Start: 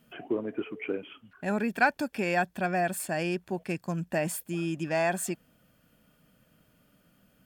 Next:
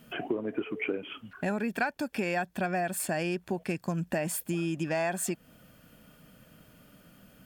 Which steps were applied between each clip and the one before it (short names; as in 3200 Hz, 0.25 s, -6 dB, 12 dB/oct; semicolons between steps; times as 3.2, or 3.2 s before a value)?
compressor 4:1, threshold -37 dBFS, peak gain reduction 16.5 dB; gain +8 dB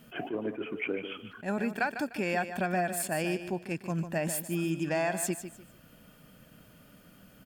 on a send: feedback echo 0.15 s, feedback 27%, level -10.5 dB; on the sum: attack slew limiter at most 250 dB/s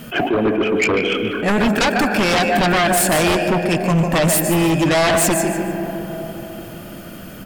digital reverb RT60 3.9 s, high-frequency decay 0.3×, pre-delay 95 ms, DRR 8.5 dB; sine folder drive 12 dB, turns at -16 dBFS; gain +4 dB